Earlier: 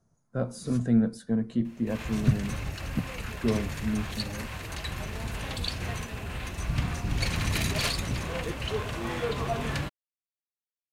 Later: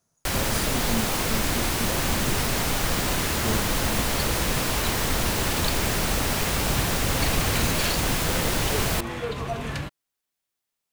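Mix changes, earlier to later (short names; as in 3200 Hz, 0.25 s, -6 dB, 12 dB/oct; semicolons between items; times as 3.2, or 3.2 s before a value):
speech: add tilt +3 dB/oct; first sound: unmuted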